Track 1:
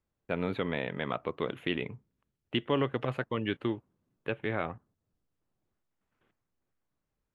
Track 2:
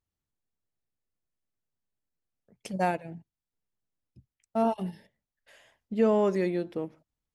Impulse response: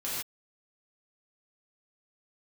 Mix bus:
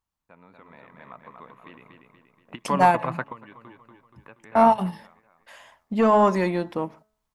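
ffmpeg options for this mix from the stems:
-filter_complex "[0:a]equalizer=frequency=3200:width_type=o:width=0.22:gain=-14.5,acompressor=threshold=-36dB:ratio=1.5,volume=-0.5dB,asplit=2[link_01][link_02];[link_02]volume=-22dB[link_03];[1:a]bandreject=frequency=215.1:width_type=h:width=4,bandreject=frequency=430.2:width_type=h:width=4,bandreject=frequency=645.3:width_type=h:width=4,bandreject=frequency=860.4:width_type=h:width=4,bandreject=frequency=1075.5:width_type=h:width=4,bandreject=frequency=1290.6:width_type=h:width=4,bandreject=frequency=1505.7:width_type=h:width=4,bandreject=frequency=1720.8:width_type=h:width=4,bandreject=frequency=1935.9:width_type=h:width=4,asoftclip=type=tanh:threshold=-15dB,volume=1.5dB,asplit=2[link_04][link_05];[link_05]apad=whole_len=324077[link_06];[link_01][link_06]sidechaingate=range=-17dB:threshold=-57dB:ratio=16:detection=peak[link_07];[link_03]aecho=0:1:238|476|714|952|1190|1428|1666:1|0.5|0.25|0.125|0.0625|0.0312|0.0156[link_08];[link_07][link_04][link_08]amix=inputs=3:normalize=0,equalizer=frequency=100:width_type=o:width=0.67:gain=-7,equalizer=frequency=400:width_type=o:width=0.67:gain=-7,equalizer=frequency=1000:width_type=o:width=0.67:gain=11,dynaudnorm=framelen=220:gausssize=7:maxgain=6.5dB"

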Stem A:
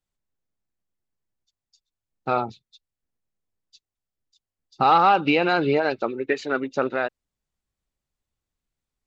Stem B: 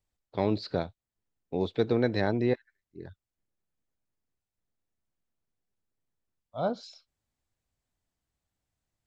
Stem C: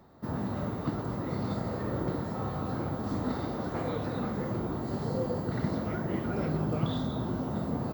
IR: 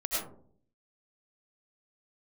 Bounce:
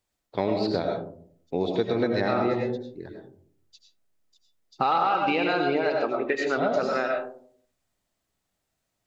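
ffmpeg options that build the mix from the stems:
-filter_complex "[0:a]volume=-4dB,asplit=2[link_01][link_02];[link_02]volume=-4.5dB[link_03];[1:a]volume=1.5dB,asplit=2[link_04][link_05];[link_05]volume=-3.5dB[link_06];[3:a]atrim=start_sample=2205[link_07];[link_03][link_06]amix=inputs=2:normalize=0[link_08];[link_08][link_07]afir=irnorm=-1:irlink=0[link_09];[link_01][link_04][link_09]amix=inputs=3:normalize=0,lowshelf=frequency=110:gain=-11.5,acompressor=threshold=-21dB:ratio=4"

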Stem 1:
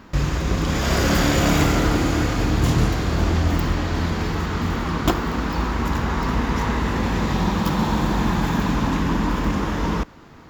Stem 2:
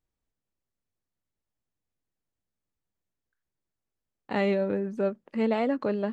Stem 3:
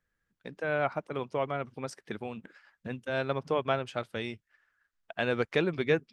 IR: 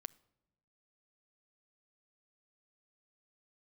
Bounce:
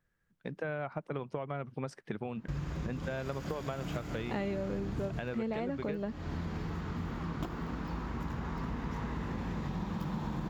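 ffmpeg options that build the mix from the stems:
-filter_complex "[0:a]adelay=2350,volume=-17dB,asplit=2[link_01][link_02];[link_02]volume=-5.5dB[link_03];[1:a]volume=-2.5dB[link_04];[2:a]volume=2dB,asplit=2[link_05][link_06];[link_06]apad=whole_len=566657[link_07];[link_01][link_07]sidechaincompress=threshold=-39dB:ratio=8:attack=16:release=264[link_08];[link_08][link_05]amix=inputs=2:normalize=0,highshelf=frequency=3800:gain=-10.5,acompressor=threshold=-31dB:ratio=6,volume=0dB[link_09];[3:a]atrim=start_sample=2205[link_10];[link_03][link_10]afir=irnorm=-1:irlink=0[link_11];[link_04][link_09][link_11]amix=inputs=3:normalize=0,equalizer=frequency=150:width_type=o:width=0.87:gain=6,acompressor=threshold=-32dB:ratio=6"

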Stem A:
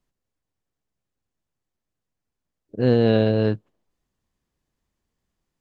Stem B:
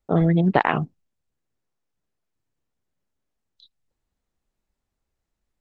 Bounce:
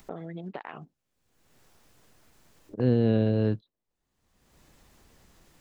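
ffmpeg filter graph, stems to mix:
ffmpeg -i stem1.wav -i stem2.wav -filter_complex "[0:a]acrossover=split=2600[link_01][link_02];[link_02]acompressor=threshold=-48dB:ratio=4:attack=1:release=60[link_03];[link_01][link_03]amix=inputs=2:normalize=0,agate=range=-16dB:threshold=-28dB:ratio=16:detection=peak,acrossover=split=370|3000[link_04][link_05][link_06];[link_05]acompressor=threshold=-31dB:ratio=3[link_07];[link_04][link_07][link_06]amix=inputs=3:normalize=0,volume=-3dB[link_08];[1:a]highpass=frequency=350:poles=1,acompressor=threshold=-24dB:ratio=6,volume=-17dB[link_09];[link_08][link_09]amix=inputs=2:normalize=0,acompressor=mode=upward:threshold=-29dB:ratio=2.5" out.wav

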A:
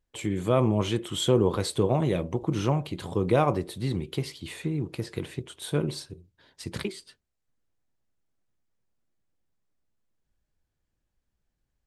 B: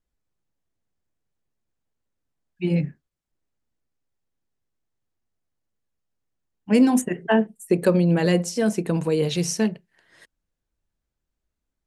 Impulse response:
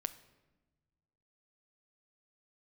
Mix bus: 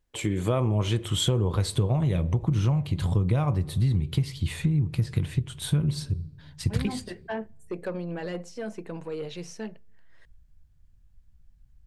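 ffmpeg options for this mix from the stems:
-filter_complex "[0:a]asubboost=boost=11:cutoff=120,volume=1dB,asplit=2[link_01][link_02];[link_02]volume=-7dB[link_03];[1:a]lowshelf=frequency=320:gain=-11,asoftclip=type=tanh:threshold=-18.5dB,aemphasis=mode=reproduction:type=75fm,volume=-8dB,asplit=2[link_04][link_05];[link_05]volume=-21dB[link_06];[2:a]atrim=start_sample=2205[link_07];[link_03][link_06]amix=inputs=2:normalize=0[link_08];[link_08][link_07]afir=irnorm=-1:irlink=0[link_09];[link_01][link_04][link_09]amix=inputs=3:normalize=0,acompressor=threshold=-21dB:ratio=6"

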